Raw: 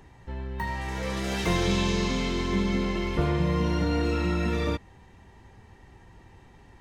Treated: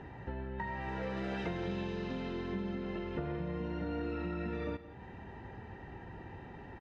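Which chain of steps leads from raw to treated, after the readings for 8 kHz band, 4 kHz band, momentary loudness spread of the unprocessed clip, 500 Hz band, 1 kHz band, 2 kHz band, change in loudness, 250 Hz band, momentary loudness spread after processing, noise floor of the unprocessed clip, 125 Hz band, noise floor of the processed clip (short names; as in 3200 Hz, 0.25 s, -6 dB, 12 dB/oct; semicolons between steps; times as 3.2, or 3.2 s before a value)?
under -25 dB, -17.5 dB, 8 LU, -9.0 dB, -9.5 dB, -11.0 dB, -12.5 dB, -10.0 dB, 11 LU, -54 dBFS, -12.5 dB, -50 dBFS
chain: LPF 2300 Hz 12 dB/oct; compressor 10:1, threshold -40 dBFS, peak gain reduction 19.5 dB; notch comb 1100 Hz; on a send: echo 0.174 s -15 dB; on the sum: gain +7 dB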